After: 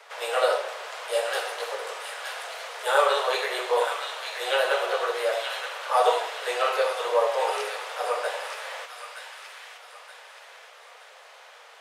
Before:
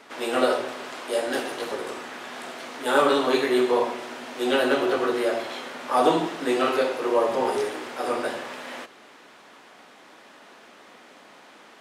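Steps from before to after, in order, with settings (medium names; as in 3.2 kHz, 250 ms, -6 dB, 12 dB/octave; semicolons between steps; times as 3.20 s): steep high-pass 450 Hz 72 dB/octave; on a send: feedback echo behind a high-pass 922 ms, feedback 42%, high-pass 1.6 kHz, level -5 dB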